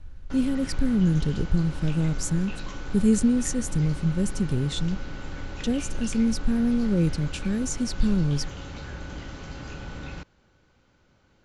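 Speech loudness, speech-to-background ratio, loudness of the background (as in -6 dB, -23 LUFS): -26.0 LUFS, 13.0 dB, -39.0 LUFS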